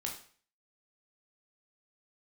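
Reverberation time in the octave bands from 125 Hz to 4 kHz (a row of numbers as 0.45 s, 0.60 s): 0.50 s, 0.45 s, 0.45 s, 0.45 s, 0.45 s, 0.45 s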